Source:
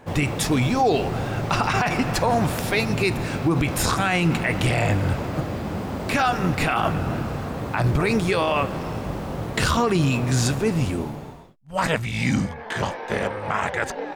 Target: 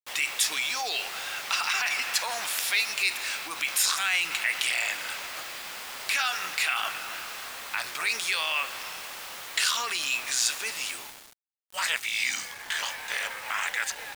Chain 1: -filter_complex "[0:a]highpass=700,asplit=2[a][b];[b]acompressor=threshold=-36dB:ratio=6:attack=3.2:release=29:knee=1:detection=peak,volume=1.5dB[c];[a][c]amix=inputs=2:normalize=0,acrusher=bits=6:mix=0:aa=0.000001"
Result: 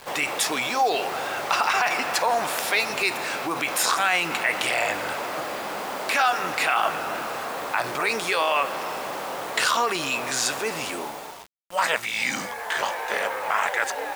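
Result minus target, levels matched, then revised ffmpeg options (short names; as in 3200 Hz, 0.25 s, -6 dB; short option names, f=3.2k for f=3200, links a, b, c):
500 Hz band +13.5 dB
-filter_complex "[0:a]highpass=2.3k,asplit=2[a][b];[b]acompressor=threshold=-36dB:ratio=6:attack=3.2:release=29:knee=1:detection=peak,volume=1.5dB[c];[a][c]amix=inputs=2:normalize=0,acrusher=bits=6:mix=0:aa=0.000001"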